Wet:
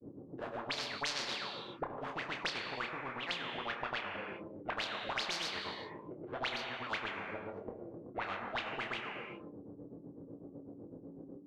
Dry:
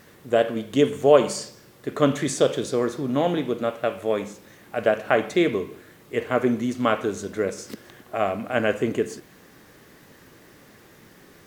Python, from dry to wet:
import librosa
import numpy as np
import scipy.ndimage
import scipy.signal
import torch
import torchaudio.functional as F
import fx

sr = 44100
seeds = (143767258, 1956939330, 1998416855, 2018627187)

y = scipy.signal.medfilt(x, 25)
y = fx.env_lowpass(y, sr, base_hz=780.0, full_db=-17.0)
y = fx.granulator(y, sr, seeds[0], grain_ms=142.0, per_s=8.0, spray_ms=100.0, spread_st=0)
y = fx.chorus_voices(y, sr, voices=6, hz=0.26, base_ms=21, depth_ms=4.0, mix_pct=30)
y = fx.tube_stage(y, sr, drive_db=22.0, bias=0.45)
y = fx.auto_wah(y, sr, base_hz=260.0, top_hz=4400.0, q=21.0, full_db=-25.0, direction='up')
y = fx.low_shelf(y, sr, hz=380.0, db=6.0)
y = fx.doubler(y, sr, ms=30.0, db=-10.5)
y = fx.rev_gated(y, sr, seeds[1], gate_ms=420, shape='falling', drr_db=11.0)
y = fx.spectral_comp(y, sr, ratio=4.0)
y = y * librosa.db_to_amplitude(12.5)